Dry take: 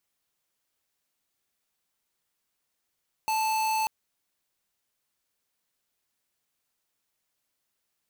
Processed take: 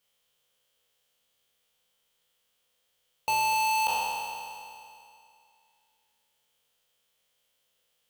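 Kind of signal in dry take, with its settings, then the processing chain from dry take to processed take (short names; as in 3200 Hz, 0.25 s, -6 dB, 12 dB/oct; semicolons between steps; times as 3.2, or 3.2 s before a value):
tone square 877 Hz -26.5 dBFS 0.59 s
spectral trails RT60 2.51 s; thirty-one-band EQ 315 Hz -10 dB, 500 Hz +11 dB, 3150 Hz +12 dB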